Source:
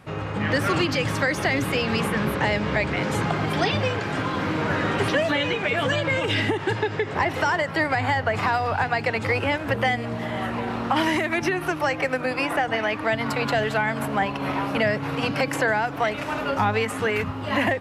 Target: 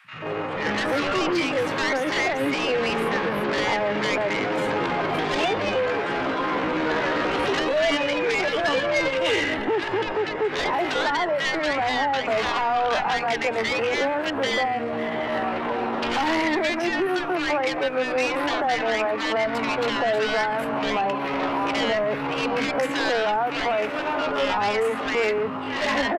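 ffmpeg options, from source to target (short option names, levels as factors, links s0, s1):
-filter_complex "[0:a]highpass=f=120:w=0.5412,highpass=f=120:w=1.3066,acrossover=split=250 3100:gain=0.224 1 0.178[s0][s1][s2];[s0][s1][s2]amix=inputs=3:normalize=0,asplit=2[s3][s4];[s4]asoftclip=type=tanh:threshold=0.0501,volume=0.316[s5];[s3][s5]amix=inputs=2:normalize=0,aeval=exprs='0.299*(cos(1*acos(clip(val(0)/0.299,-1,1)))-cos(1*PI/2))+0.0335*(cos(2*acos(clip(val(0)/0.299,-1,1)))-cos(2*PI/2))+0.15*(cos(5*acos(clip(val(0)/0.299,-1,1)))-cos(5*PI/2))+0.00299*(cos(7*acos(clip(val(0)/0.299,-1,1)))-cos(7*PI/2))':c=same,atempo=0.68,acrossover=split=170|1400[s6][s7][s8];[s6]adelay=40[s9];[s7]adelay=140[s10];[s9][s10][s8]amix=inputs=3:normalize=0,volume=0.501"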